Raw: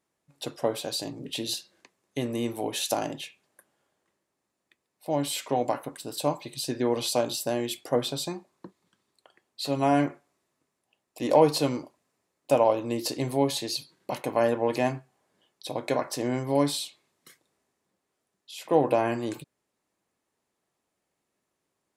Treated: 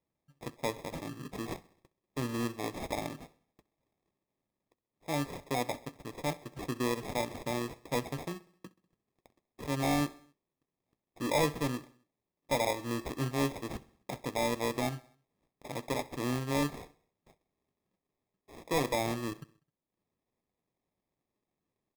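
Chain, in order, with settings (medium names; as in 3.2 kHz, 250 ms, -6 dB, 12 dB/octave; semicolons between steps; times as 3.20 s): bass shelf 230 Hz +9.5 dB; transient shaper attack -1 dB, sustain -6 dB; sample-and-hold 30×; overload inside the chain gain 15 dB; on a send: feedback delay 65 ms, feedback 58%, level -22 dB; on the sum: trim -8 dB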